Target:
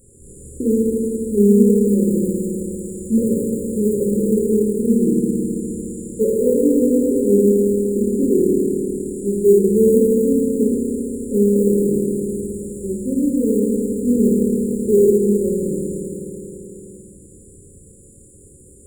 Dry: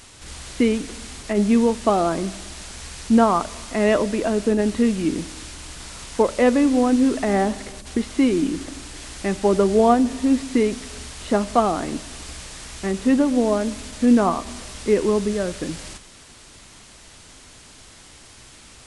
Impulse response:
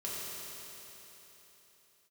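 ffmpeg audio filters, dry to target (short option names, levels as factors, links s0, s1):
-filter_complex "[1:a]atrim=start_sample=2205[s0];[0:a][s0]afir=irnorm=-1:irlink=0,asplit=2[s1][s2];[s2]acrusher=samples=30:mix=1:aa=0.000001,volume=0.398[s3];[s1][s3]amix=inputs=2:normalize=0,afftfilt=real='re*(1-between(b*sr/4096,570,6900))':imag='im*(1-between(b*sr/4096,570,6900))':win_size=4096:overlap=0.75,volume=0.891"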